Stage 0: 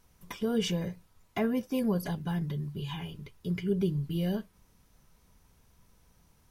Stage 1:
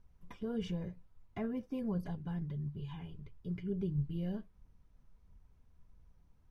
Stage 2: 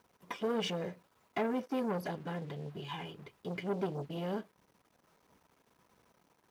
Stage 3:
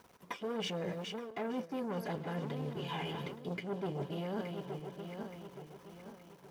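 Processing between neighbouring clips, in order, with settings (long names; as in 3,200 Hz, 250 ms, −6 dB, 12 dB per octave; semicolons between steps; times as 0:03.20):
low-pass filter 1,800 Hz 6 dB per octave; low-shelf EQ 130 Hz +11.5 dB; flanger 1.5 Hz, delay 0 ms, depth 4.3 ms, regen +73%; level −5.5 dB
in parallel at −11 dB: gain into a clipping stage and back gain 35 dB; on the sum: leveller curve on the samples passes 2; high-pass filter 380 Hz 12 dB per octave; level +4 dB
feedback delay that plays each chunk backwards 436 ms, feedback 62%, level −12.5 dB; reversed playback; downward compressor 6 to 1, threshold −43 dBFS, peak gain reduction 14 dB; reversed playback; level +7.5 dB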